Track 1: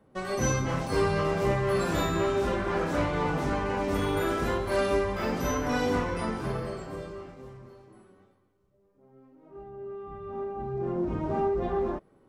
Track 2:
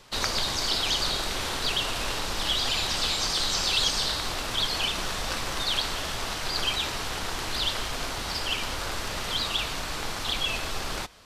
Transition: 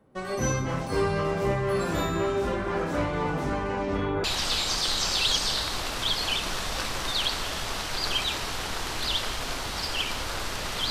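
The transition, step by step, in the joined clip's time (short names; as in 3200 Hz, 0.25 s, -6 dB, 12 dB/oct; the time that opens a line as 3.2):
track 1
3.67–4.24 LPF 12000 Hz -> 1500 Hz
4.24 switch to track 2 from 2.76 s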